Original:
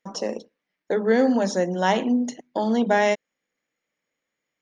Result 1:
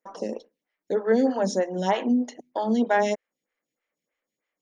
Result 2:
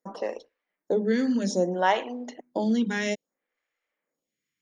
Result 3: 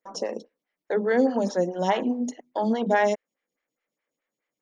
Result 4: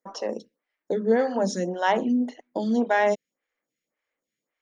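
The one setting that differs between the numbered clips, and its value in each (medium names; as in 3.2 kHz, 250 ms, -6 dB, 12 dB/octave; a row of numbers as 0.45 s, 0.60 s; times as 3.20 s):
lamp-driven phase shifter, rate: 3.2 Hz, 0.61 Hz, 4.8 Hz, 1.8 Hz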